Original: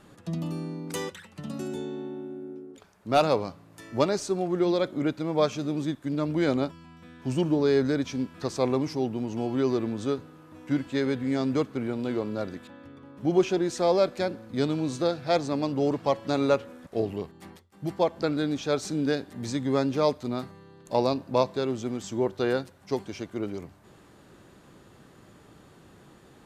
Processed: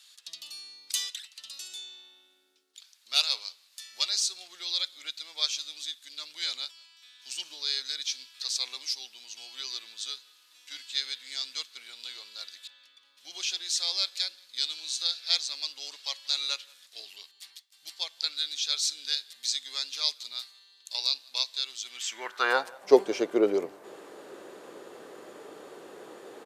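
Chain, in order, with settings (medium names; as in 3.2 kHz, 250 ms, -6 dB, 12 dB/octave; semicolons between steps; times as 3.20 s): high-pass sweep 4 kHz -> 440 Hz, 21.81–22.94 s; speakerphone echo 180 ms, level -24 dB; trim +6 dB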